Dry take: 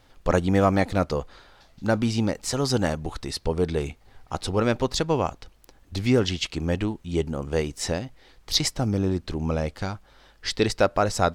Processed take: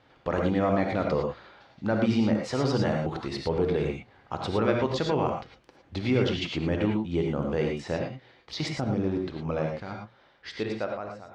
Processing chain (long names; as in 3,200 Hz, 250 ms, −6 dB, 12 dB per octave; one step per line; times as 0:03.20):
fade-out on the ending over 2.05 s
mains-hum notches 60/120/180/240 Hz
0:07.73–0:09.91: output level in coarse steps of 9 dB
brickwall limiter −16.5 dBFS, peak gain reduction 9 dB
band-pass filter 100–3,100 Hz
reverb whose tail is shaped and stops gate 130 ms rising, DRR 1.5 dB